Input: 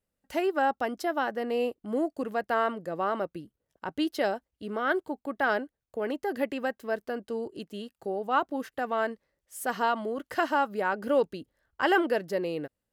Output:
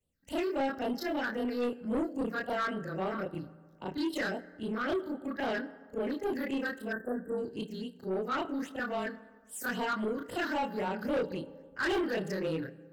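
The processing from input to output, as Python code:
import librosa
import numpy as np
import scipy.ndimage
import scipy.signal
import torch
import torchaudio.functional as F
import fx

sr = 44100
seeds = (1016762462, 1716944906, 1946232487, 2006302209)

y = fx.frame_reverse(x, sr, frame_ms=74.0)
y = fx.phaser_stages(y, sr, stages=6, low_hz=680.0, high_hz=1800.0, hz=3.7, feedback_pct=45)
y = fx.rev_fdn(y, sr, rt60_s=1.6, lf_ratio=1.0, hf_ratio=0.5, size_ms=34.0, drr_db=16.0)
y = 10.0 ** (-32.5 / 20.0) * np.tanh(y / 10.0 ** (-32.5 / 20.0))
y = fx.spec_erase(y, sr, start_s=6.92, length_s=0.46, low_hz=2000.0, high_hz=7500.0)
y = y * 10.0 ** (6.0 / 20.0)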